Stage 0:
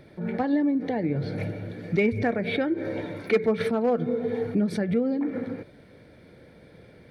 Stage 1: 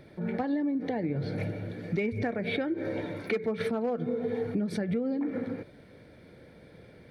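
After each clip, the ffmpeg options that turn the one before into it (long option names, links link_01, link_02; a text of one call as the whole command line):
ffmpeg -i in.wav -af "acompressor=threshold=-25dB:ratio=4,volume=-1.5dB" out.wav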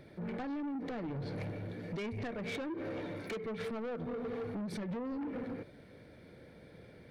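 ffmpeg -i in.wav -af "asoftclip=type=tanh:threshold=-33dB,volume=-2.5dB" out.wav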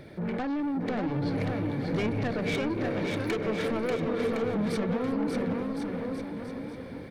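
ffmpeg -i in.wav -af "aecho=1:1:590|1062|1440|1742|1983:0.631|0.398|0.251|0.158|0.1,volume=8dB" out.wav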